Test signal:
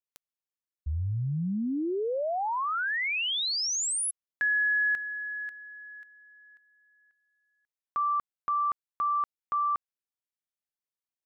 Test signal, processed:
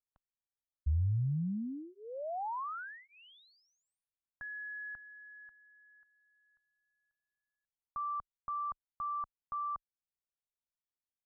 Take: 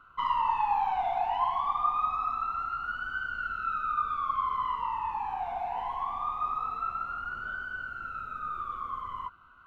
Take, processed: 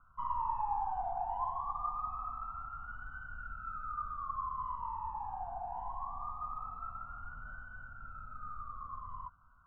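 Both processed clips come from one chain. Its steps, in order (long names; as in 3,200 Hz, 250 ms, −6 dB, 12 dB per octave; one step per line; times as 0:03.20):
low-pass filter 2,400 Hz 24 dB per octave
spectral tilt −2.5 dB per octave
phaser with its sweep stopped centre 930 Hz, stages 4
level −8 dB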